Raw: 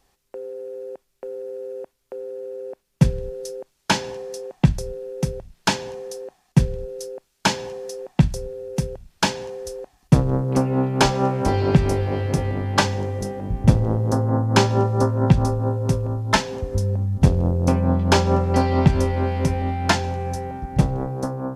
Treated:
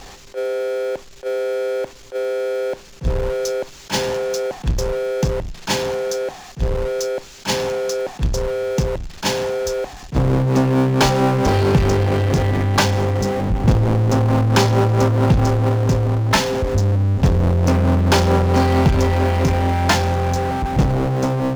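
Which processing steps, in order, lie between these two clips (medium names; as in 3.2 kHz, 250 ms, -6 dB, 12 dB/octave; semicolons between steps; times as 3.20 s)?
elliptic low-pass 7.2 kHz; power-law waveshaper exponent 0.5; attacks held to a fixed rise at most 370 dB/s; trim -2.5 dB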